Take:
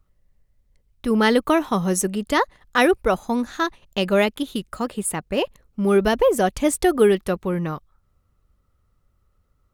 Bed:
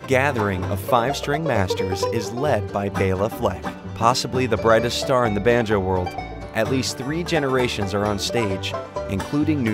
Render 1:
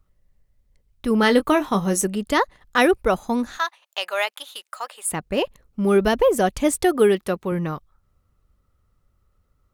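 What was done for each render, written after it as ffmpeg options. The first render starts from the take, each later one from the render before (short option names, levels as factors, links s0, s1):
-filter_complex "[0:a]asettb=1/sr,asplit=3[s0][s1][s2];[s0]atrim=end=1.214[s3];[s1]atrim=start=1.21:end=2.05,asetpts=PTS-STARTPTS,afade=t=in:d=0.004:c=qsin,afade=t=out:st=0.836:d=0.004:c=qsin,asplit=2[s4][s5];[s5]adelay=20,volume=0.335[s6];[s4][s6]amix=inputs=2:normalize=0,atrim=end_sample=37044[s7];[s2]atrim=start=2.046[s8];[s3][s7]acrossfade=d=0.004:c1=hsin:c2=qsin[s9];[s9][s8]acrossfade=d=0.004:c1=qsin:c2=hsin,asettb=1/sr,asplit=3[s10][s11][s12];[s10]atrim=end=3.584[s13];[s11]atrim=start=3.58:end=5.12,asetpts=PTS-STARTPTS,afade=t=in:d=0.004:c=qsin,afade=t=out:st=1.536:d=0.004:c=qsin,highpass=f=700:w=0.5412,highpass=f=700:w=1.3066[s14];[s12]atrim=start=5.116[s15];[s13][s14]acrossfade=d=0.004:c1=hsin:c2=qsin[s16];[s16][s15]acrossfade=d=0.004:c1=qsin:c2=hsin,asettb=1/sr,asplit=3[s17][s18][s19];[s17]atrim=end=6.834[s20];[s18]atrim=start=6.83:end=7.52,asetpts=PTS-STARTPTS,afade=t=in:d=0.004:c=qsin,afade=t=out:st=0.686:d=0.004:c=qsin,highpass=f=150:p=1[s21];[s19]atrim=start=7.516[s22];[s20][s21]acrossfade=d=0.004:c1=hsin:c2=qsin[s23];[s23][s22]acrossfade=d=0.004:c1=qsin:c2=hsin"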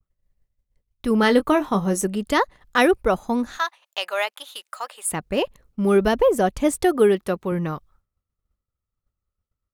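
-af "agate=range=0.0224:threshold=0.00282:ratio=3:detection=peak,adynamicequalizer=threshold=0.0224:dfrequency=1600:dqfactor=0.7:tfrequency=1600:tqfactor=0.7:attack=5:release=100:ratio=0.375:range=3:mode=cutabove:tftype=highshelf"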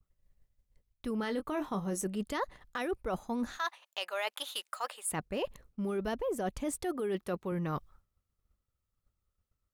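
-af "alimiter=limit=0.178:level=0:latency=1:release=125,areverse,acompressor=threshold=0.0251:ratio=6,areverse"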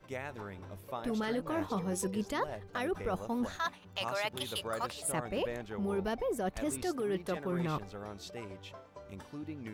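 -filter_complex "[1:a]volume=0.075[s0];[0:a][s0]amix=inputs=2:normalize=0"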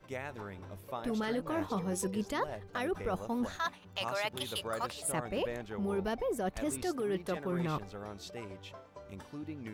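-af anull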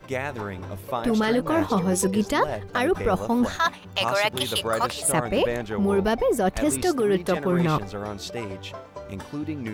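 -af "volume=3.98"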